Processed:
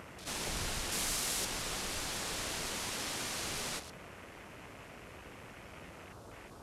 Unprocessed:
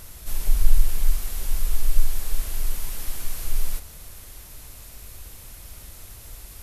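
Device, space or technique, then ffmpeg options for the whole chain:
over-cleaned archive recording: -filter_complex "[0:a]highpass=180,lowpass=7k,afwtdn=0.00224,asettb=1/sr,asplit=3[a][b][c];[a]atrim=end=0.924[d];[b]atrim=start=0.92:end=1.45,asetpts=PTS-STARTPTS,afade=t=in:d=0.004:c=qsin,afade=t=out:st=0.526:d=0.004:c=qsin,highshelf=f=5.6k:g=9[e];[c]atrim=start=1.446[f];[d][e]acrossfade=d=0.004:c1=hsin:c2=qsin[g];[g][f]acrossfade=d=0.004:c1=qsin:c2=hsin,volume=4.5dB"

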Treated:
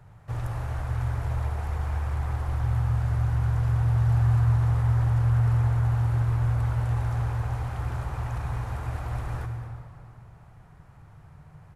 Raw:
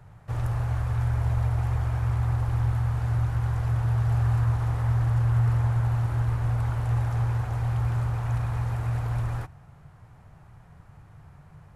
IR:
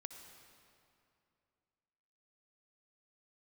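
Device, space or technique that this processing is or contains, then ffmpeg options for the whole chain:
cave: -filter_complex "[0:a]aecho=1:1:220:0.178[a];[1:a]atrim=start_sample=2205[b];[a][b]afir=irnorm=-1:irlink=0,volume=4dB"

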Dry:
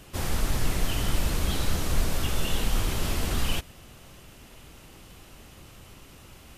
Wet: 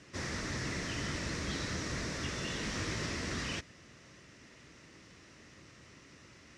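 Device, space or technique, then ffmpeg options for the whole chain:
car door speaker: -filter_complex "[0:a]highpass=100,equalizer=f=300:t=q:w=4:g=3,equalizer=f=790:t=q:w=4:g=-8,equalizer=f=1.9k:t=q:w=4:g=9,equalizer=f=3.1k:t=q:w=4:g=-5,equalizer=f=5.6k:t=q:w=4:g=6,lowpass=f=7k:w=0.5412,lowpass=f=7k:w=1.3066,asettb=1/sr,asplit=3[a][b][c];[a]atrim=end=2.614[d];[b]atrim=start=2.61:end=3.06,asetpts=PTS-STARTPTS,afade=t=in:d=0.004:c=qsin,afade=t=out:st=0.446:d=0.004:c=qsin,asplit=2[e][f];[f]adelay=19,volume=-5.5dB[g];[e][g]amix=inputs=2:normalize=0,atrim=end_sample=19845[h];[c]atrim=start=3.056[i];[d][h]acrossfade=d=0.004:c1=hsin:c2=qsin[j];[j][i]acrossfade=d=0.004:c1=qsin:c2=hsin,volume=-6dB"

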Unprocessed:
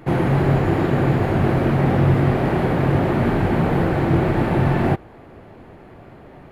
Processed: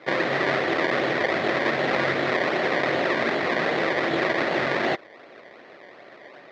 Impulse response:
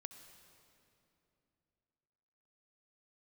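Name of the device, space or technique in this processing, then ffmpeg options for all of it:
circuit-bent sampling toy: -af "acrusher=samples=23:mix=1:aa=0.000001:lfo=1:lforange=23:lforate=2.6,highpass=460,equalizer=f=580:t=q:w=4:g=4,equalizer=f=870:t=q:w=4:g=-5,equalizer=f=1.9k:t=q:w=4:g=9,equalizer=f=2.9k:t=q:w=4:g=-5,lowpass=f=4.1k:w=0.5412,lowpass=f=4.1k:w=1.3066"

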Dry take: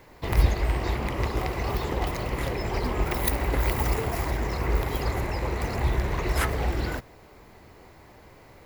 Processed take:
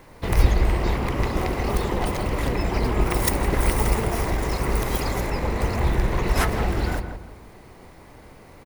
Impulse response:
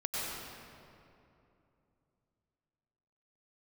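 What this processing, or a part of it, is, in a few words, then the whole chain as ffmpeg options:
octave pedal: -filter_complex "[0:a]asplit=2[a][b];[b]asetrate=22050,aresample=44100,atempo=2,volume=-3dB[c];[a][c]amix=inputs=2:normalize=0,asettb=1/sr,asplit=3[d][e][f];[d]atrim=end=4.384[g];[e]atrim=start=4.38:end=5.3,asetpts=PTS-STARTPTS,afade=t=in:d=0.004:c=qsin,afade=t=out:st=0.916:d=0.004:c=qsin,bass=f=250:g=-3,treble=f=4k:g=5[h];[f]atrim=start=5.296[i];[g][h]acrossfade=d=0.004:c1=hsin:c2=qsin[j];[j][i]acrossfade=d=0.004:c1=qsin:c2=hsin,asplit=2[k][l];[l]adelay=166,lowpass=f=1.6k:p=1,volume=-7dB,asplit=2[m][n];[n]adelay=166,lowpass=f=1.6k:p=1,volume=0.37,asplit=2[o][p];[p]adelay=166,lowpass=f=1.6k:p=1,volume=0.37,asplit=2[q][r];[r]adelay=166,lowpass=f=1.6k:p=1,volume=0.37[s];[k][m][o][q][s]amix=inputs=5:normalize=0,volume=2dB"

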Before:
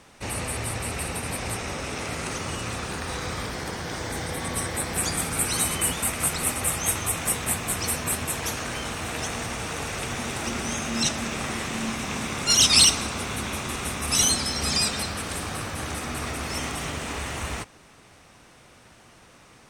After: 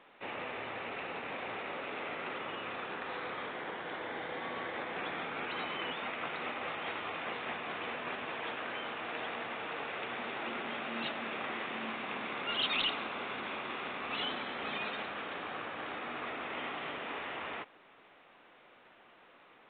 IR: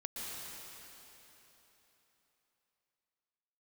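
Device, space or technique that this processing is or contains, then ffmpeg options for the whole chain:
telephone: -af "highpass=350,lowpass=3.5k,asoftclip=type=tanh:threshold=-15dB,volume=-5.5dB" -ar 8000 -c:a pcm_alaw

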